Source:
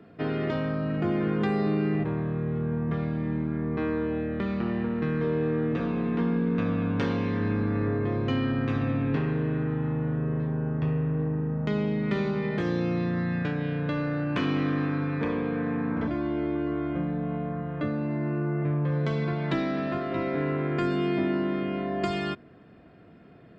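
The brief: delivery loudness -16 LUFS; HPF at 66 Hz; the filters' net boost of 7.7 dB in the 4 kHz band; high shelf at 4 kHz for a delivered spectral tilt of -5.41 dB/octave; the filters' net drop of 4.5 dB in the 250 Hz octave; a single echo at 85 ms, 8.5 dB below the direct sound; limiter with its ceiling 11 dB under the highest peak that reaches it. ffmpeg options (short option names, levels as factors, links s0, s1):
-af "highpass=66,equalizer=f=250:t=o:g=-6.5,highshelf=f=4000:g=9,equalizer=f=4000:t=o:g=5.5,alimiter=limit=0.0668:level=0:latency=1,aecho=1:1:85:0.376,volume=6.31"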